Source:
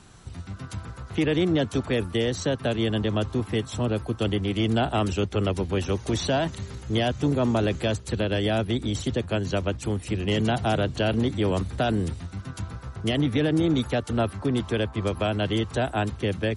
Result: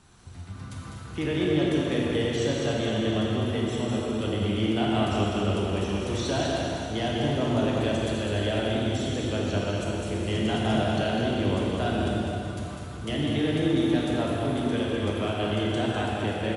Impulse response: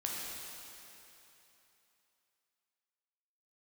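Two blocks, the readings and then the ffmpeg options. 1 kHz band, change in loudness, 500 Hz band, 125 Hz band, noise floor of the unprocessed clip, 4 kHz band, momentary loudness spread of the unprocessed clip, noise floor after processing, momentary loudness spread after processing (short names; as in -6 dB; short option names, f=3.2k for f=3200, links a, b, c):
-0.5 dB, -1.0 dB, -1.0 dB, -2.0 dB, -43 dBFS, -0.5 dB, 8 LU, -39 dBFS, 5 LU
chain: -filter_complex "[0:a]aecho=1:1:201:0.531[a];[1:a]atrim=start_sample=2205[b];[a][b]afir=irnorm=-1:irlink=0,volume=-5dB"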